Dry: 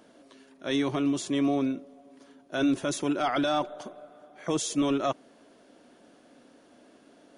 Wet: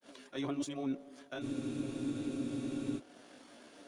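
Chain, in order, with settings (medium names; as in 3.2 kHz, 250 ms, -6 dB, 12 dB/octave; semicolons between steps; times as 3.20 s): reverse; compression 6:1, threshold -35 dBFS, peak gain reduction 13 dB; reverse; tempo 1.9×; granulator 165 ms, spray 15 ms, pitch spread up and down by 0 st; in parallel at -7 dB: crossover distortion -58 dBFS; on the sum: spectral freeze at 1.43 s, 1.55 s; tape noise reduction on one side only encoder only; trim +1 dB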